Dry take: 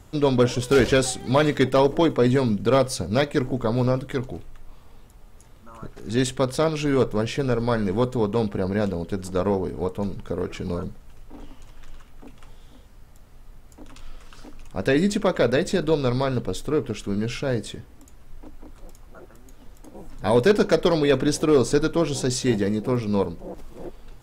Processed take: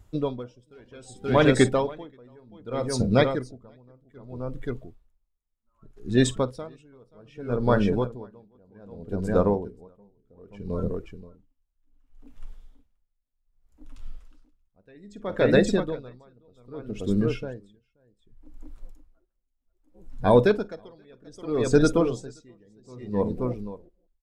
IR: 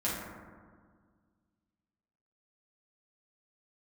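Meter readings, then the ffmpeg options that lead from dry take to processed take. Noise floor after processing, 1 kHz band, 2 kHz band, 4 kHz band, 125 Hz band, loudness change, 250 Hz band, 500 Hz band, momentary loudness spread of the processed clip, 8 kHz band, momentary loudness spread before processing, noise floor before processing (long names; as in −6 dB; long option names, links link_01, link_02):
−75 dBFS, −4.0 dB, −3.5 dB, −6.5 dB, −4.0 dB, −2.0 dB, −3.5 dB, −4.0 dB, 22 LU, −7.5 dB, 11 LU, −48 dBFS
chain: -af "afftdn=noise_reduction=14:noise_floor=-31,aecho=1:1:49|529:0.112|0.447,aeval=exprs='val(0)*pow(10,-36*(0.5-0.5*cos(2*PI*0.64*n/s))/20)':channel_layout=same,volume=2.5dB"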